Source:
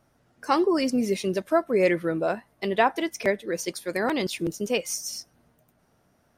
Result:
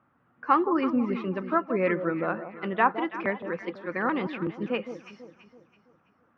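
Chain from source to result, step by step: speaker cabinet 120–2400 Hz, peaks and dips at 130 Hz -4 dB, 400 Hz -7 dB, 640 Hz -9 dB, 1200 Hz +8 dB, 2100 Hz -3 dB; echo with dull and thin repeats by turns 0.165 s, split 930 Hz, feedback 62%, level -9 dB

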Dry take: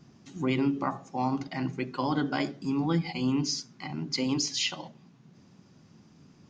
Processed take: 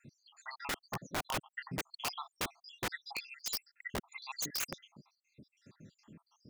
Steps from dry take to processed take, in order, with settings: random spectral dropouts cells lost 80%; notch comb 750 Hz; wrapped overs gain 33 dB; gain +4 dB

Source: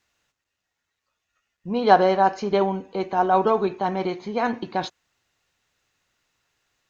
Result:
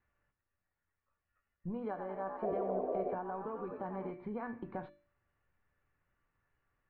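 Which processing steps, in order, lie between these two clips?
low shelf 140 Hz +12 dB; 1.79–4.11 frequency-shifting echo 89 ms, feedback 42%, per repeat +65 Hz, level -8 dB; compressor 12:1, threshold -29 dBFS, peak gain reduction 21 dB; LPF 1900 Hz 24 dB/oct; bell 640 Hz -3.5 dB 0.58 oct; notches 50/100/150/200/250/300/350 Hz; resonator 580 Hz, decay 0.44 s, mix 80%; 2.42–3.15 painted sound noise 350–760 Hz -43 dBFS; gain +6.5 dB

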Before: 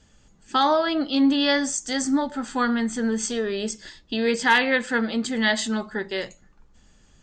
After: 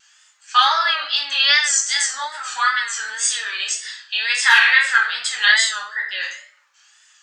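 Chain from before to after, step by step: 5.5–6.23 formant sharpening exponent 1.5; HPF 1300 Hz 24 dB/oct; shoebox room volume 110 m³, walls mixed, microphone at 1.3 m; wow and flutter 88 cents; maximiser +7.5 dB; gain -1 dB

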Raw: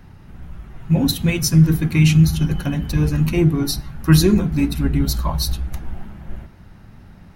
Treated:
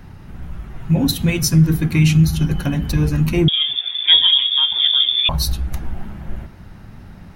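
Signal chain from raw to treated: in parallel at +2 dB: compressor, threshold -23 dBFS, peak gain reduction 15 dB; 3.48–5.29 on the sum: inverted band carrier 3500 Hz; gain -2.5 dB

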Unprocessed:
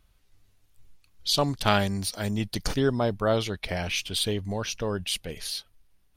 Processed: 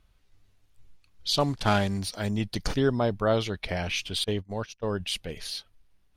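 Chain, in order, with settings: 1.4–1.99 CVSD 64 kbps; 4.24–5 gate -29 dBFS, range -24 dB; high shelf 8600 Hz -10.5 dB

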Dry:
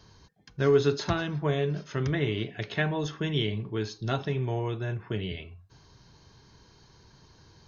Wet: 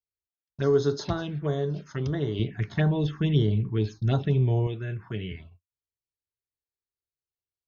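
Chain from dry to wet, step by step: envelope phaser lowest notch 180 Hz, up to 2500 Hz, full sweep at -23.5 dBFS; gate -46 dBFS, range -45 dB; 2.39–4.67 low shelf 280 Hz +10 dB

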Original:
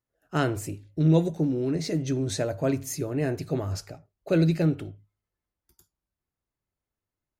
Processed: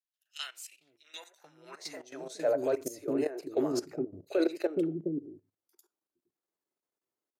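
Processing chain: three bands offset in time highs, mids, lows 40/460 ms, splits 360/2400 Hz; level quantiser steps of 15 dB; high-pass sweep 3000 Hz -> 350 Hz, 0.75–2.86

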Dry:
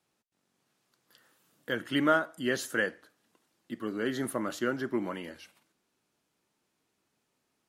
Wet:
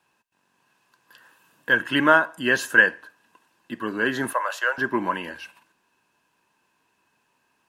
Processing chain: 4.33–4.78 elliptic high-pass 520 Hz, stop band 60 dB; small resonant body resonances 1000/1600/2600 Hz, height 15 dB, ringing for 20 ms; gain +4.5 dB

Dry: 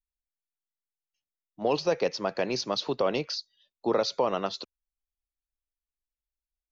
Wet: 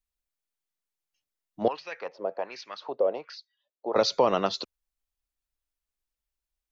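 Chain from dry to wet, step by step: 1.68–3.96 wah 1.3 Hz 500–2200 Hz, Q 2.9; gain +4 dB

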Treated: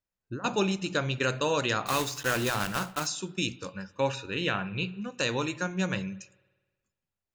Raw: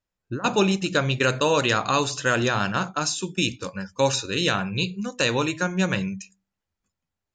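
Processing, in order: 1.86–3.09 block floating point 3-bit; 3.97–5.14 resonant high shelf 3700 Hz -9.5 dB, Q 1.5; spring tank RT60 1.3 s, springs 54 ms, chirp 25 ms, DRR 20 dB; gain -6.5 dB

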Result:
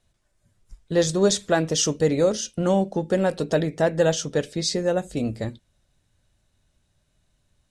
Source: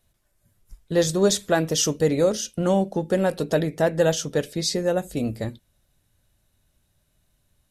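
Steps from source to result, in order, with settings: LPF 9000 Hz 24 dB/oct

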